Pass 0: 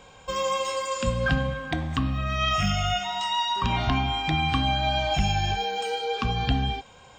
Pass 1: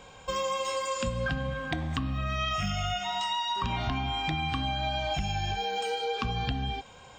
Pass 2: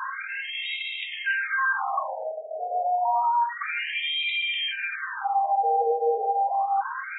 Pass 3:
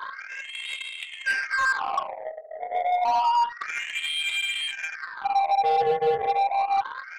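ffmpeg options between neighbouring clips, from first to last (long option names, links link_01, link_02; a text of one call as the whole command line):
ffmpeg -i in.wav -af "acompressor=threshold=-27dB:ratio=6" out.wav
ffmpeg -i in.wav -filter_complex "[0:a]asplit=2[link_01][link_02];[link_02]highpass=frequency=720:poles=1,volume=36dB,asoftclip=type=tanh:threshold=-12.5dB[link_03];[link_01][link_03]amix=inputs=2:normalize=0,lowpass=frequency=1800:poles=1,volume=-6dB,afftfilt=real='re*between(b*sr/1024,550*pow(2800/550,0.5+0.5*sin(2*PI*0.29*pts/sr))/1.41,550*pow(2800/550,0.5+0.5*sin(2*PI*0.29*pts/sr))*1.41)':imag='im*between(b*sr/1024,550*pow(2800/550,0.5+0.5*sin(2*PI*0.29*pts/sr))/1.41,550*pow(2800/550,0.5+0.5*sin(2*PI*0.29*pts/sr))*1.41)':win_size=1024:overlap=0.75" out.wav
ffmpeg -i in.wav -filter_complex "[0:a]aeval=exprs='0.178*(cos(1*acos(clip(val(0)/0.178,-1,1)))-cos(1*PI/2))+0.0141*(cos(3*acos(clip(val(0)/0.178,-1,1)))-cos(3*PI/2))+0.00141*(cos(4*acos(clip(val(0)/0.178,-1,1)))-cos(4*PI/2))+0.0112*(cos(7*acos(clip(val(0)/0.178,-1,1)))-cos(7*PI/2))':channel_layout=same,asplit=2[link_01][link_02];[link_02]volume=22dB,asoftclip=hard,volume=-22dB,volume=-9.5dB[link_03];[link_01][link_03]amix=inputs=2:normalize=0" out.wav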